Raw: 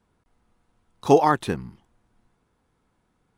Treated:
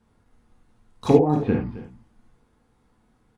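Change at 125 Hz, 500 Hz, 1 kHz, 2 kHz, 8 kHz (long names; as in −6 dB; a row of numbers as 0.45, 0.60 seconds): +6.0 dB, +0.5 dB, −7.0 dB, −8.5 dB, can't be measured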